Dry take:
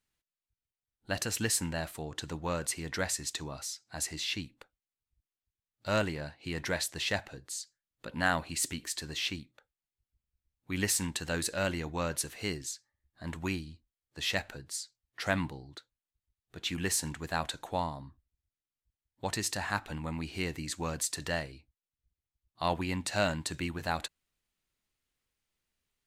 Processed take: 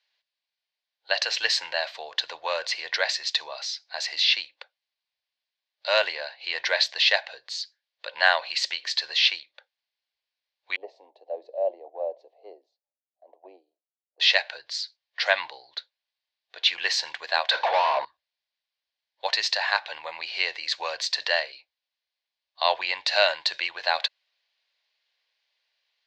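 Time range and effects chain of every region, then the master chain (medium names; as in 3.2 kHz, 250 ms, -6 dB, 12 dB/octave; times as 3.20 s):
10.76–14.20 s: elliptic band-pass 240–730 Hz + three bands expanded up and down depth 70%
17.51–18.05 s: low-pass 2.9 kHz 6 dB/octave + overdrive pedal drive 35 dB, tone 1 kHz, clips at -19.5 dBFS
whole clip: elliptic band-pass 560–4500 Hz, stop band 40 dB; treble shelf 2.5 kHz +11 dB; band-stop 1.3 kHz, Q 5.1; trim +7.5 dB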